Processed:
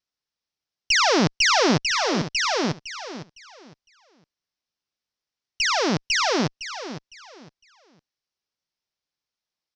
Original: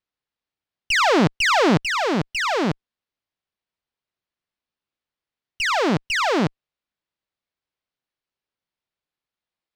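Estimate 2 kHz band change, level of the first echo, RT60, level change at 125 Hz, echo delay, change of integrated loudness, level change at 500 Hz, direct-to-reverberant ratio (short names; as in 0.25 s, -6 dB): -1.5 dB, -12.0 dB, none, -3.0 dB, 0.508 s, -1.0 dB, -2.5 dB, none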